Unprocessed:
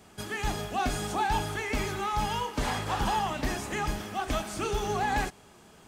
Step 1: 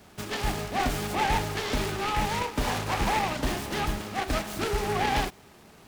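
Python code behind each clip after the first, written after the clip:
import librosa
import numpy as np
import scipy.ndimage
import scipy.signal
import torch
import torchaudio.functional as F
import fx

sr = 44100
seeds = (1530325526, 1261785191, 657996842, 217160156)

y = fx.noise_mod_delay(x, sr, seeds[0], noise_hz=1200.0, depth_ms=0.1)
y = F.gain(torch.from_numpy(y), 2.0).numpy()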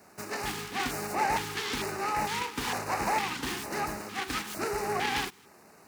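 y = fx.highpass(x, sr, hz=360.0, slope=6)
y = fx.filter_lfo_notch(y, sr, shape='square', hz=1.1, low_hz=620.0, high_hz=3300.0, q=1.2)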